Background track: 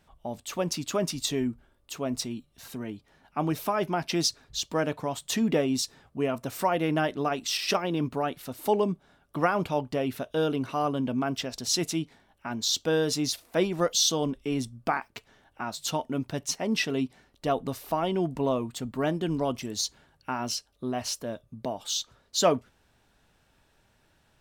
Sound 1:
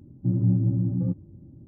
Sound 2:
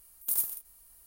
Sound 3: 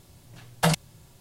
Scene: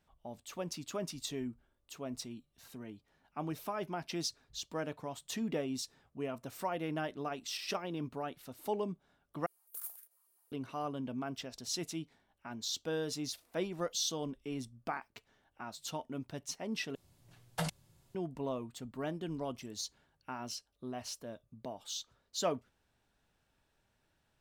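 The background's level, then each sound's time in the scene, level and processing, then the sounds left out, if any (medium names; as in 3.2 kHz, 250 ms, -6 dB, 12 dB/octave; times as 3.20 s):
background track -11 dB
9.46 s: replace with 2 -15.5 dB + step-sequenced high-pass 9.9 Hz 360–1600 Hz
16.95 s: replace with 3 -14 dB
not used: 1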